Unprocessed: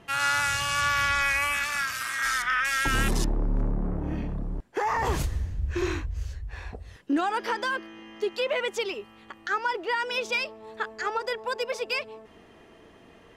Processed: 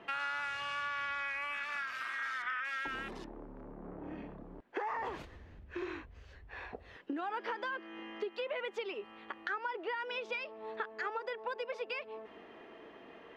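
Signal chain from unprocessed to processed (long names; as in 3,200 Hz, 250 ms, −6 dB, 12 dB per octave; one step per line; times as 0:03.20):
downward compressor 6 to 1, threshold −36 dBFS, peak gain reduction 15 dB
three-way crossover with the lows and the highs turned down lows −17 dB, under 230 Hz, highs −23 dB, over 3,700 Hz
level +1 dB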